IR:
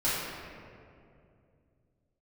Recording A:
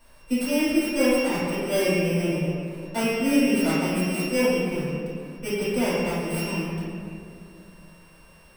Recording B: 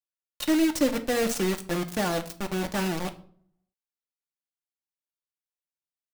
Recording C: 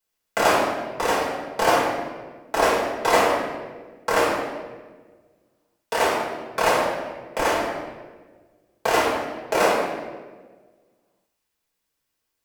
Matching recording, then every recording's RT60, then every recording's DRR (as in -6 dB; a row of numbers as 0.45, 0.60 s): A; 2.5, 0.55, 1.4 s; -12.0, 6.0, -6.5 dB